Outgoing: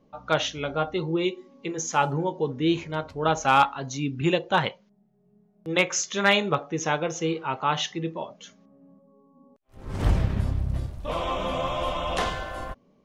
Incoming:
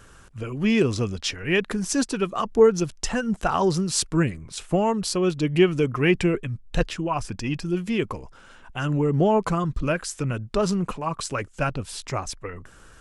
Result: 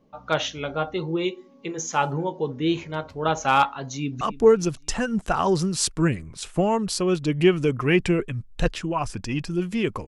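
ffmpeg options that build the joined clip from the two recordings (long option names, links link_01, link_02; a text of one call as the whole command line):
ffmpeg -i cue0.wav -i cue1.wav -filter_complex "[0:a]apad=whole_dur=10.07,atrim=end=10.07,atrim=end=4.212[link_01];[1:a]atrim=start=2.358:end=8.22[link_02];[link_01][link_02]acrossfade=duration=0.004:curve1=hsin:curve2=hsin,asplit=2[link_03][link_04];[link_04]afade=type=in:start_time=3.84:duration=0.01,afade=type=out:start_time=4.21:duration=0.01,aecho=0:1:280|560|840|1120:0.141254|0.0635642|0.0286039|0.0128717[link_05];[link_03][link_05]amix=inputs=2:normalize=0" out.wav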